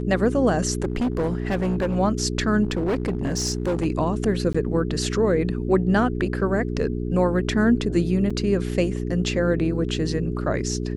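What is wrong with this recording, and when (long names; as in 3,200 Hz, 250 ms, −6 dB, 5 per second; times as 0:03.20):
mains hum 60 Hz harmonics 7 −27 dBFS
0:00.82–0:01.97: clipping −19 dBFS
0:02.63–0:03.86: clipping −19 dBFS
0:04.53–0:04.54: drop-out 15 ms
0:08.30–0:08.31: drop-out 5.2 ms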